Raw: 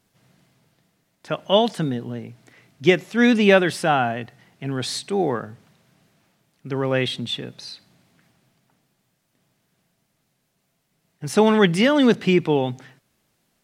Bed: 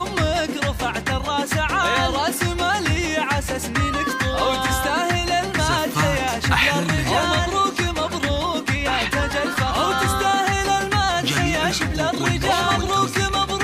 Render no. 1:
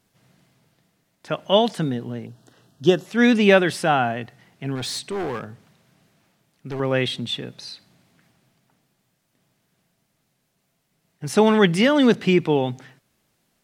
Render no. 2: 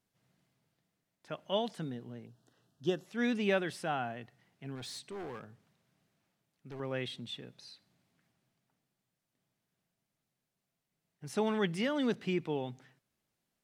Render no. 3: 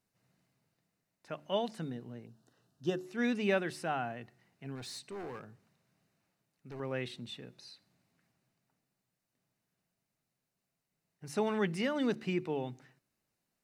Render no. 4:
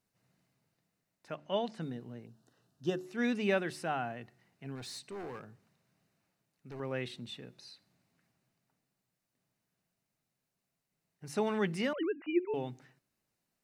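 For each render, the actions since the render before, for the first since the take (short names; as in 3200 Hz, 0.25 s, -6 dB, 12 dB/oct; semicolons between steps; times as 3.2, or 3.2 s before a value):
2.26–3.06 Butterworth band-stop 2200 Hz, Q 1.8; 4.75–6.8 hard clip -24 dBFS
gain -15.5 dB
notch 3300 Hz, Q 7.8; de-hum 73.41 Hz, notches 5
1.35–1.81 air absorption 64 m; 11.93–12.54 sine-wave speech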